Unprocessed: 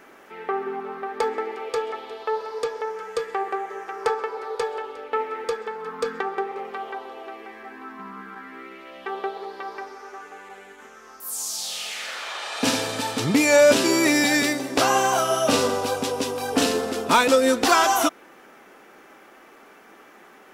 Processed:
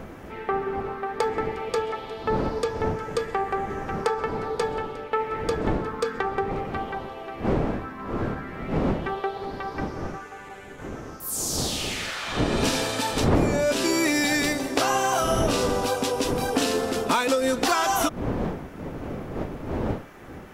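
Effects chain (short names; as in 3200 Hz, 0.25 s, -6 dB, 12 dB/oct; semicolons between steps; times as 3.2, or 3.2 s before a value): wind noise 410 Hz -23 dBFS; compressor 6:1, threshold -20 dBFS, peak gain reduction 19 dB; gain +1 dB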